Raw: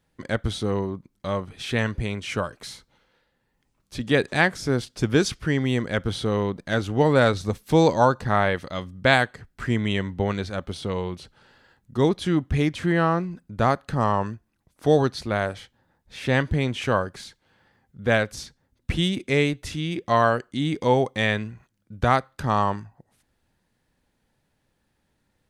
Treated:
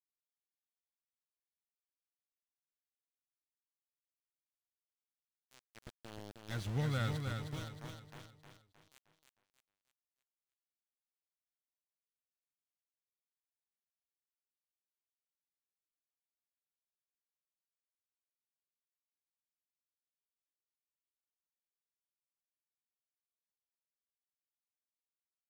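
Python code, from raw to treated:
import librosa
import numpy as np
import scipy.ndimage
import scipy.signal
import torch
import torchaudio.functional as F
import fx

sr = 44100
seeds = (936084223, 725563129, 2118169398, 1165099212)

y = fx.doppler_pass(x, sr, speed_mps=11, closest_m=2.4, pass_at_s=6.78)
y = fx.tone_stack(y, sr, knobs='6-0-2')
y = y + 0.55 * np.pad(y, (int(1.5 * sr / 1000.0), 0))[:len(y)]
y = np.where(np.abs(y) >= 10.0 ** (-45.0 / 20.0), y, 0.0)
y = fx.high_shelf(y, sr, hz=9400.0, db=-7.0)
y = fx.echo_feedback(y, sr, ms=311, feedback_pct=44, wet_db=-5.0)
y = y * 10.0 ** (4.0 / 20.0)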